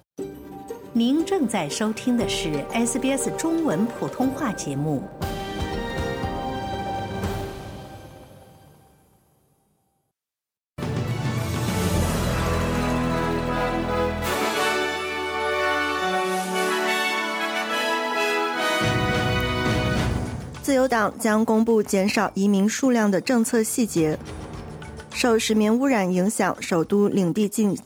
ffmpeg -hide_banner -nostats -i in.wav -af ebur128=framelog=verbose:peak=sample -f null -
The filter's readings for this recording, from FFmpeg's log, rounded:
Integrated loudness:
  I:         -23.2 LUFS
  Threshold: -33.8 LUFS
Loudness range:
  LRA:         9.8 LU
  Threshold: -44.0 LUFS
  LRA low:   -31.0 LUFS
  LRA high:  -21.2 LUFS
Sample peak:
  Peak:       -8.8 dBFS